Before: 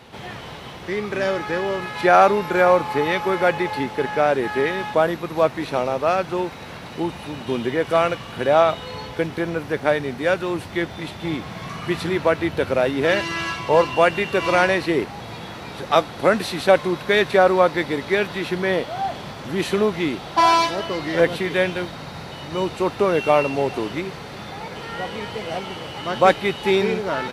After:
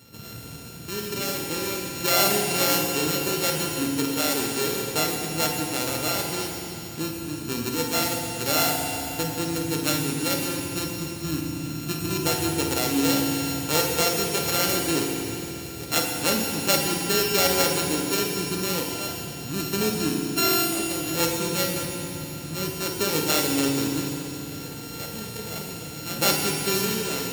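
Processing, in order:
samples sorted by size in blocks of 32 samples
high-pass filter 79 Hz
parametric band 1,000 Hz −14 dB 2.4 octaves
on a send: flutter between parallel walls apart 8.7 metres, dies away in 0.31 s
on the sum: feedback delay network reverb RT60 3.3 s, high-frequency decay 1×, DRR 0.5 dB
level −1 dB

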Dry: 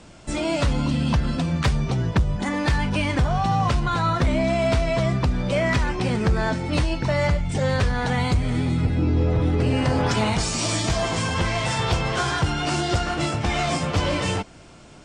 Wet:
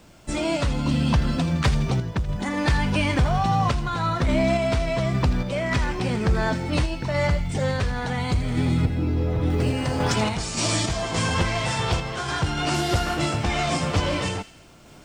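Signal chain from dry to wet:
0:12.74–0:13.17: variable-slope delta modulation 64 kbit/s
bit reduction 10 bits
0:09.50–0:10.15: high-shelf EQ 7,100 Hz +9.5 dB
delay with a high-pass on its return 82 ms, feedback 50%, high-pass 2,200 Hz, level −11 dB
sample-and-hold tremolo
level +1 dB

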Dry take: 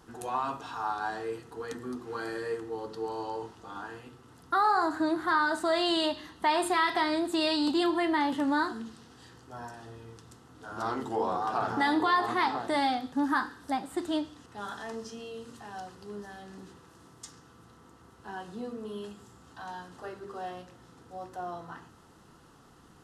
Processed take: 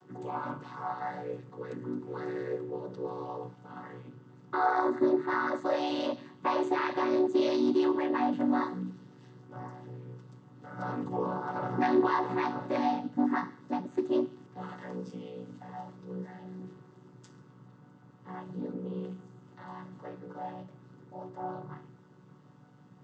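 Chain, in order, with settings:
channel vocoder with a chord as carrier minor triad, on B2

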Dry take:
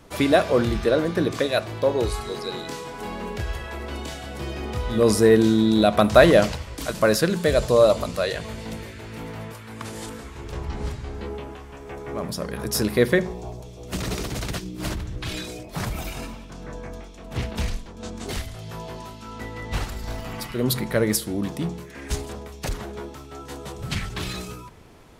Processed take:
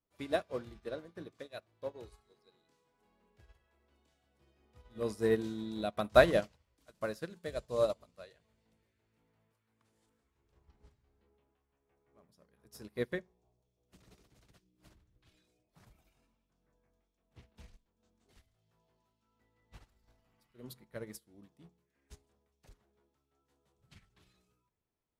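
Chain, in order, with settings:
expander for the loud parts 2.5 to 1, over −31 dBFS
level −7 dB

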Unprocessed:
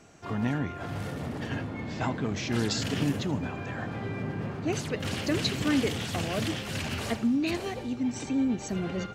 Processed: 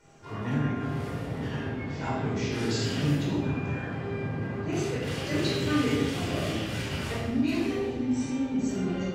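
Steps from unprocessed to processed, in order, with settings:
tuned comb filter 400 Hz, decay 0.58 s, mix 70%
rectangular room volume 1,000 cubic metres, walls mixed, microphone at 4.7 metres

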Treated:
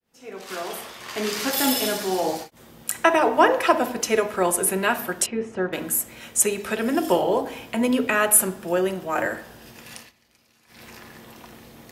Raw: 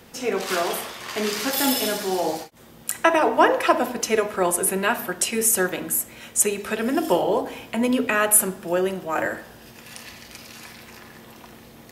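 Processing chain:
fade in at the beginning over 1.47 s
0:05.26–0:05.73: head-to-tape spacing loss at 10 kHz 44 dB
0:09.95–0:10.84: duck −20 dB, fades 0.17 s

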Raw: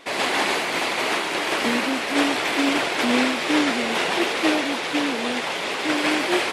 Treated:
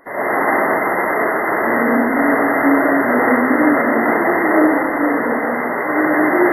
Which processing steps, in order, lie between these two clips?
brick-wall band-stop 2,100–11,000 Hz
comb and all-pass reverb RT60 1.7 s, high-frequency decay 0.95×, pre-delay 25 ms, DRR −8 dB

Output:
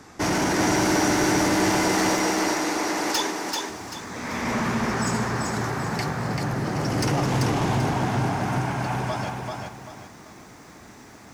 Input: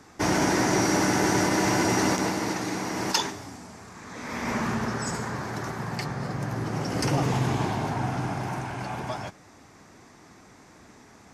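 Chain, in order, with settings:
0:01.70–0:03.70: high-pass filter 310 Hz 12 dB per octave
soft clipping −23.5 dBFS, distortion −11 dB
feedback echo at a low word length 388 ms, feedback 35%, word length 10 bits, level −3.5 dB
level +4.5 dB

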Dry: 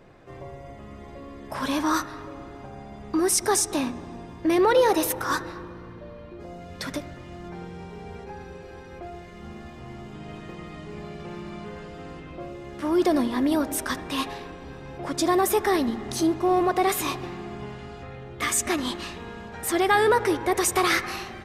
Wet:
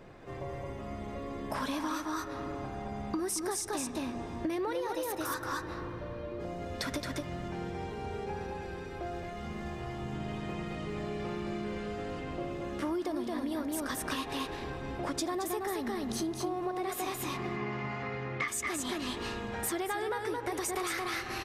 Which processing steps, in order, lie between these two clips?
0:17.34–0:18.48: loudspeaker in its box 130–6,000 Hz, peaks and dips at 140 Hz +4 dB, 1,100 Hz +7 dB, 2,100 Hz +10 dB, 3,500 Hz −5 dB
single-tap delay 221 ms −3.5 dB
downward compressor 12 to 1, threshold −31 dBFS, peak gain reduction 18 dB

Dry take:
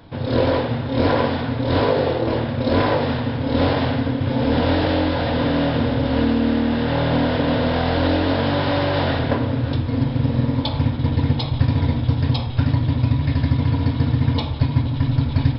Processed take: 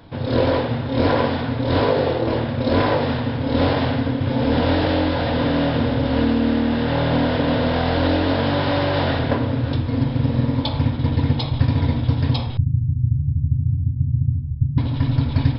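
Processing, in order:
0:12.57–0:14.78: inverse Chebyshev low-pass filter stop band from 580 Hz, stop band 60 dB

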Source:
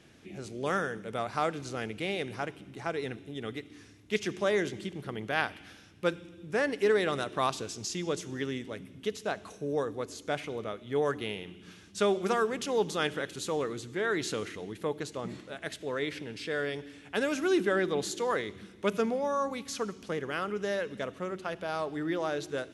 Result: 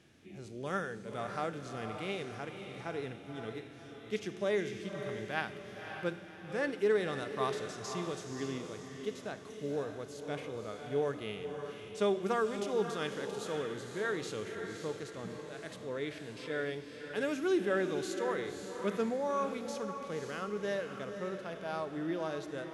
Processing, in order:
feedback delay with all-pass diffusion 551 ms, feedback 43%, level −8 dB
harmonic and percussive parts rebalanced percussive −8 dB
level −3 dB

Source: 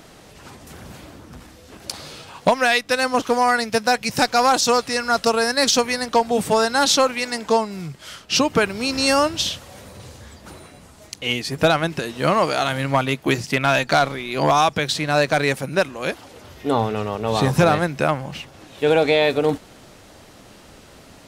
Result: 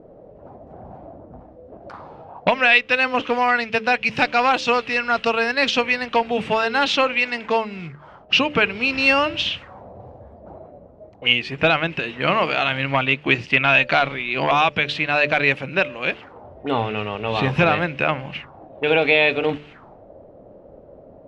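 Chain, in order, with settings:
hum removal 73.85 Hz, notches 8
envelope-controlled low-pass 460–2,700 Hz up, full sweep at −24 dBFS
level −2.5 dB

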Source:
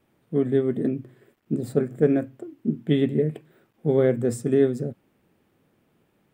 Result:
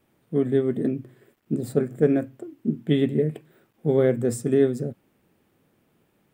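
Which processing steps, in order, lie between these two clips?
high-shelf EQ 6,000 Hz +4.5 dB

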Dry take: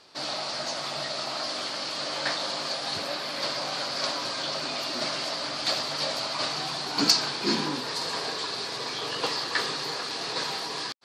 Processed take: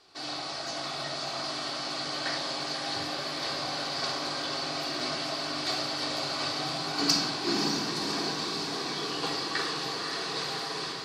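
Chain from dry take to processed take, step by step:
feedback delay with all-pass diffusion 580 ms, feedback 61%, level −5.5 dB
rectangular room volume 3,000 cubic metres, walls furnished, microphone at 3.5 metres
level −6.5 dB

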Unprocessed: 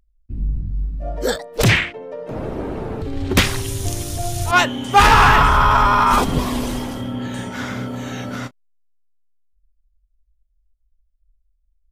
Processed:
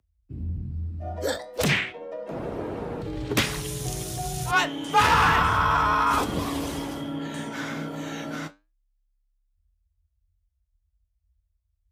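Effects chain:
flanger 0.46 Hz, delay 8.8 ms, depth 7.5 ms, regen −78%
frequency shifter +34 Hz
low-shelf EQ 120 Hz −7.5 dB
in parallel at −2.5 dB: downward compressor, threshold −28 dBFS, peak gain reduction 16 dB
on the sum: level −4.5 dB

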